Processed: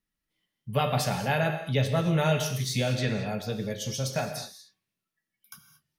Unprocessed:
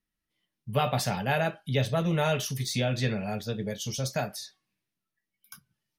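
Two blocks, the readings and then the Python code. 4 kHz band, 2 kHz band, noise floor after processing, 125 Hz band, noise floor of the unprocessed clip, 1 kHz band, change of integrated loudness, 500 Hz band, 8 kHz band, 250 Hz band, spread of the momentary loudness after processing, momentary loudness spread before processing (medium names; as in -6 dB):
+1.0 dB, +1.0 dB, under -85 dBFS, +2.0 dB, under -85 dBFS, +0.5 dB, +1.0 dB, +1.0 dB, +1.0 dB, +1.5 dB, 8 LU, 7 LU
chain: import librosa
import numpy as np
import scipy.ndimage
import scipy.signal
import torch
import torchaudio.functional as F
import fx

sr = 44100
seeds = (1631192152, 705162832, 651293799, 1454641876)

y = fx.rev_gated(x, sr, seeds[0], gate_ms=250, shape='flat', drr_db=7.0)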